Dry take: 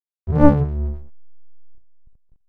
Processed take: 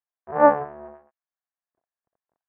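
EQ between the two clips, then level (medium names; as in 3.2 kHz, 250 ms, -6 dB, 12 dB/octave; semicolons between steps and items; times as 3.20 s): cabinet simulation 400–2600 Hz, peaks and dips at 680 Hz +8 dB, 1.1 kHz +4 dB, 1.7 kHz +10 dB; peaking EQ 900 Hz +9.5 dB 1.6 oct; -6.5 dB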